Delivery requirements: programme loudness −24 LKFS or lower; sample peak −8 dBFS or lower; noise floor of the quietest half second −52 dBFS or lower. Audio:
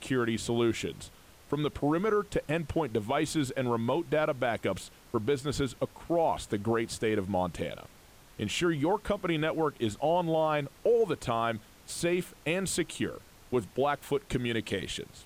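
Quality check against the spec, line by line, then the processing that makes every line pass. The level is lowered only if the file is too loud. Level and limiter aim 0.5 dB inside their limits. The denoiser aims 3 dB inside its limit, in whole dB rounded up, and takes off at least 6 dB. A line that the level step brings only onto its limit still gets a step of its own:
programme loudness −30.5 LKFS: in spec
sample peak −18.0 dBFS: in spec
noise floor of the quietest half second −55 dBFS: in spec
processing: no processing needed

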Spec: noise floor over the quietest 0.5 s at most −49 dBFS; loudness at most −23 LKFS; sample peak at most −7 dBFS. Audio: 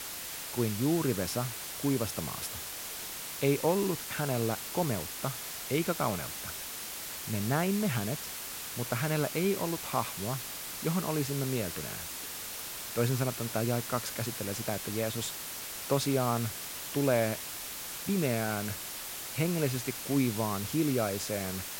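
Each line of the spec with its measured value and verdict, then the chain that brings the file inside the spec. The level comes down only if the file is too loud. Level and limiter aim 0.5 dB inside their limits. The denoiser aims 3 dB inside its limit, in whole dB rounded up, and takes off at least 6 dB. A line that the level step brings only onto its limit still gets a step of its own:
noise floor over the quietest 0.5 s −40 dBFS: out of spec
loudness −32.0 LKFS: in spec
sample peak −13.5 dBFS: in spec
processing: broadband denoise 12 dB, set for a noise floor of −40 dBFS

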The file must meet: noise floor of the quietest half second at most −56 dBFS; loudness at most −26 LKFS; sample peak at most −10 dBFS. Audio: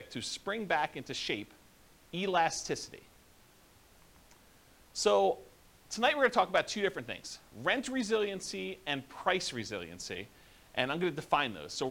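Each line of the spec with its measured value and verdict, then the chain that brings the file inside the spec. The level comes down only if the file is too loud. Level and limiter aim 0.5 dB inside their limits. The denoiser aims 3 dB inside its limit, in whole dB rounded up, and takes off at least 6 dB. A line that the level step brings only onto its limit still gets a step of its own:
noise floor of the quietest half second −61 dBFS: in spec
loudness −33.0 LKFS: in spec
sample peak −13.0 dBFS: in spec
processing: no processing needed

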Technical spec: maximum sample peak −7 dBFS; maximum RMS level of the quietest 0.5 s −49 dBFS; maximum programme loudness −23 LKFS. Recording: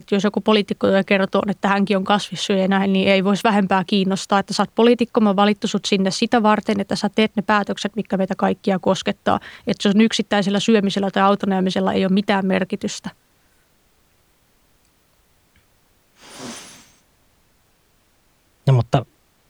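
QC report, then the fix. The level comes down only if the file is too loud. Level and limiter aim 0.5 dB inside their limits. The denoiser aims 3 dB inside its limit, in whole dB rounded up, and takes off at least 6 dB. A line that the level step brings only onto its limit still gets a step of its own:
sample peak −2.0 dBFS: out of spec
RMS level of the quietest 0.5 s −60 dBFS: in spec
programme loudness −18.5 LKFS: out of spec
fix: level −5 dB
brickwall limiter −7.5 dBFS

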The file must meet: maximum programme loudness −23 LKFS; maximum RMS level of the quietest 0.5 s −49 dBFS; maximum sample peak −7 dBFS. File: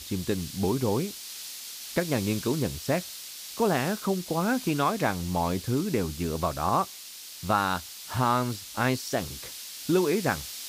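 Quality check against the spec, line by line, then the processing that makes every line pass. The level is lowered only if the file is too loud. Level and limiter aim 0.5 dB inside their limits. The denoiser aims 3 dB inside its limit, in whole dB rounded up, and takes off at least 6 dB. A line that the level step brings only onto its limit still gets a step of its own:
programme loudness −28.5 LKFS: in spec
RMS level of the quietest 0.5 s −43 dBFS: out of spec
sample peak −10.5 dBFS: in spec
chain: broadband denoise 9 dB, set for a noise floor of −43 dBFS

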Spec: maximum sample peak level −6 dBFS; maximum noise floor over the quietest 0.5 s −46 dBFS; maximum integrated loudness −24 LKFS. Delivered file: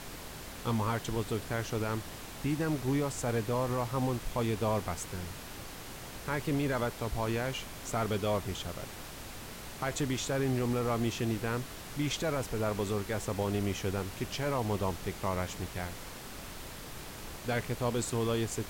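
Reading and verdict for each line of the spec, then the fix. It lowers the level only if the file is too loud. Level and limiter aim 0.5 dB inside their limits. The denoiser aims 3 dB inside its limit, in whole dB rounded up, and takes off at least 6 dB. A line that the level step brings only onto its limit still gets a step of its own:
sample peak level −19.5 dBFS: in spec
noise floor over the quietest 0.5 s −44 dBFS: out of spec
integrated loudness −34.0 LKFS: in spec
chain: broadband denoise 6 dB, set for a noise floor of −44 dBFS

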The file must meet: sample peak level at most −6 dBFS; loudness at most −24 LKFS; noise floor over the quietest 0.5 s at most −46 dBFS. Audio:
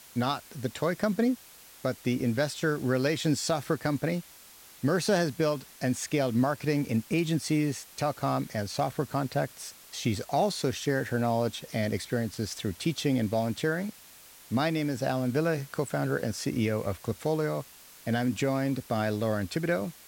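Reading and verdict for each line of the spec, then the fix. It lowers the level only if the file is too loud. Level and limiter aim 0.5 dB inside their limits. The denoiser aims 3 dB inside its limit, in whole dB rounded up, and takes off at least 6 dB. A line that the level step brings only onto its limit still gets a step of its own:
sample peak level −15.5 dBFS: in spec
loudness −29.5 LKFS: in spec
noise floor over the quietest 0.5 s −52 dBFS: in spec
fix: no processing needed

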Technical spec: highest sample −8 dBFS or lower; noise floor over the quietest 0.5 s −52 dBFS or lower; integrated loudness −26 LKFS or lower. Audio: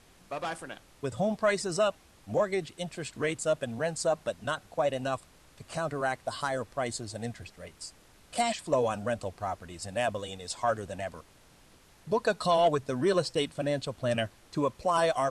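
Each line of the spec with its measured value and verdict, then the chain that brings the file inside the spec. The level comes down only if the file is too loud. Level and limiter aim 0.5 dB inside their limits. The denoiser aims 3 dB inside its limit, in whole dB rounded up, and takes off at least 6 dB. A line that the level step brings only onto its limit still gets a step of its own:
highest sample −15.0 dBFS: in spec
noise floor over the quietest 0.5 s −58 dBFS: in spec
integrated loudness −31.0 LKFS: in spec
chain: no processing needed

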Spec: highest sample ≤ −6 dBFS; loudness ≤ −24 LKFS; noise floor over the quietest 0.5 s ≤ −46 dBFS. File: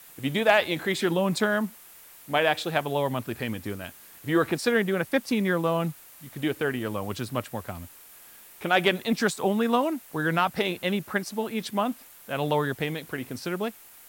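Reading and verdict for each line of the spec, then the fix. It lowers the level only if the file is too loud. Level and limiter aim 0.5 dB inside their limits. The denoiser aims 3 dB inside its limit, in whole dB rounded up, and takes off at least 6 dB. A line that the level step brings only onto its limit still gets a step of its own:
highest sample −8.0 dBFS: in spec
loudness −27.0 LKFS: in spec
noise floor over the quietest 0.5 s −50 dBFS: in spec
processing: no processing needed

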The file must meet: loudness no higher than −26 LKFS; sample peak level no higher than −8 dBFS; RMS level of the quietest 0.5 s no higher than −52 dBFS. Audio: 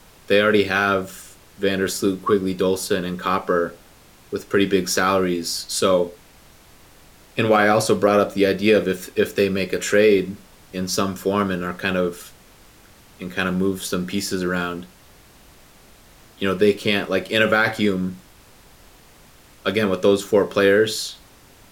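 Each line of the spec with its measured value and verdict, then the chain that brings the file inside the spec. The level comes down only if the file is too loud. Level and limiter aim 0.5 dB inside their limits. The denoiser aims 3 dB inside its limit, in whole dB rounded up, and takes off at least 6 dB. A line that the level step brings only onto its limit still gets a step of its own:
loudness −20.5 LKFS: out of spec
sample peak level −5.5 dBFS: out of spec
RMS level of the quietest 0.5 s −49 dBFS: out of spec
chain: level −6 dB

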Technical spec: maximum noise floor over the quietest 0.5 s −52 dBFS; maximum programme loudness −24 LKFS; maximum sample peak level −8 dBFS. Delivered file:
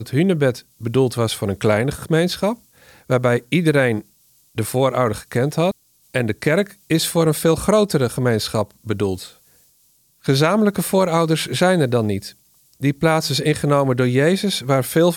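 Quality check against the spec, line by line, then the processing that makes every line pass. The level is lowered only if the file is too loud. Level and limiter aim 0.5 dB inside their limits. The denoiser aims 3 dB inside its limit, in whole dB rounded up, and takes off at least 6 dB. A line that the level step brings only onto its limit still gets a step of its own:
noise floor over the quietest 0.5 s −58 dBFS: in spec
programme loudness −19.0 LKFS: out of spec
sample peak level −5.0 dBFS: out of spec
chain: level −5.5 dB

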